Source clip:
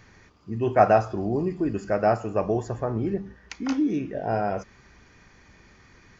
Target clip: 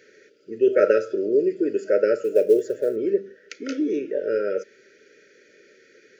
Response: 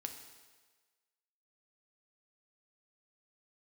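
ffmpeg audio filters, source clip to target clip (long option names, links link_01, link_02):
-filter_complex "[0:a]highpass=frequency=430:width_type=q:width=3.9,asettb=1/sr,asplit=3[link_01][link_02][link_03];[link_01]atrim=end=2.244[link_04];[link_02]atrim=start=2.24:end=2.96,asetpts=PTS-STARTPTS,afade=type=in:duration=0.004:curve=qsin,afade=type=out:start_time=0.716:duration=0.004:curve=qsin,acrusher=bits=9:mode=log:mix=0:aa=0.000001[link_05];[link_03]atrim=start=2.956[link_06];[link_04][link_05]acrossfade=duration=0.004:curve1=hsin:curve2=qsin[link_07];[link_07][link_06]acrossfade=duration=0.004:curve1=qsin:curve2=hsin,afftfilt=real='re*(1-between(b*sr/4096,620,1300))':imag='im*(1-between(b*sr/4096,620,1300))':win_size=4096:overlap=0.75"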